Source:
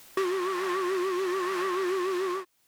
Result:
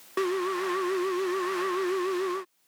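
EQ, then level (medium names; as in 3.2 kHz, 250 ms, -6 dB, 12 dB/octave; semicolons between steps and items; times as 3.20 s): steep high-pass 150 Hz; 0.0 dB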